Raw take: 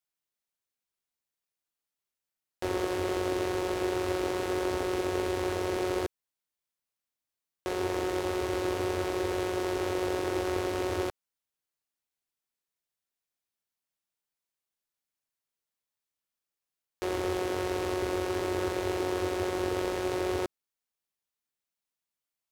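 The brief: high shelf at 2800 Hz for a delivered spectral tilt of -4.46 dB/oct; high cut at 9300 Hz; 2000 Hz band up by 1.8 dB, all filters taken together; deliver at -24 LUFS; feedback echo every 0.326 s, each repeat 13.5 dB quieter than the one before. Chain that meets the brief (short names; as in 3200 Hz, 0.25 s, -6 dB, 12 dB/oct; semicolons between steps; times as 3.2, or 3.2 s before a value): LPF 9300 Hz; bell 2000 Hz +5 dB; high shelf 2800 Hz -7 dB; feedback echo 0.326 s, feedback 21%, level -13.5 dB; gain +8 dB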